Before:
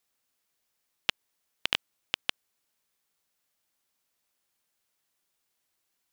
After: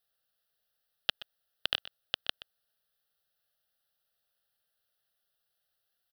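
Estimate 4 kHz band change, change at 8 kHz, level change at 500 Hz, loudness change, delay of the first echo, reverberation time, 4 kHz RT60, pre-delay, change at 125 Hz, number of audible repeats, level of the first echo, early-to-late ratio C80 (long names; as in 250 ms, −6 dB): −1.0 dB, −11.0 dB, −1.5 dB, −2.0 dB, 125 ms, no reverb audible, no reverb audible, no reverb audible, −2.5 dB, 1, −17.0 dB, no reverb audible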